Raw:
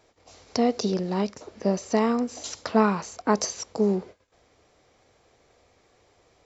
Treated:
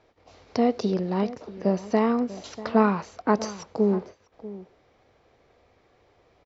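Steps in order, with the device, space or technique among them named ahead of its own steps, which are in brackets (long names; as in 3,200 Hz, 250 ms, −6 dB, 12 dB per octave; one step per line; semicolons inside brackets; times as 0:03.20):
shout across a valley (high-frequency loss of the air 180 metres; slap from a distant wall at 110 metres, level −16 dB)
level +1 dB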